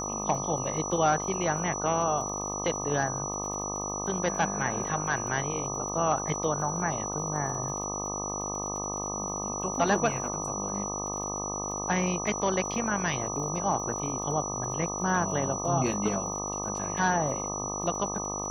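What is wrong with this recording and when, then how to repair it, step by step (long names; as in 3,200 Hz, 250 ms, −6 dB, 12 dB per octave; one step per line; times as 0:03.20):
mains buzz 50 Hz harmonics 25 −36 dBFS
surface crackle 42 per second −39 dBFS
whistle 5,900 Hz −34 dBFS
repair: click removal
hum removal 50 Hz, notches 25
notch filter 5,900 Hz, Q 30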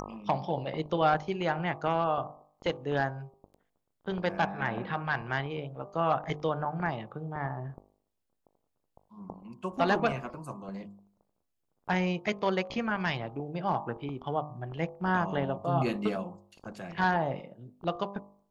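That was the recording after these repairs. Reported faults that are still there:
none of them is left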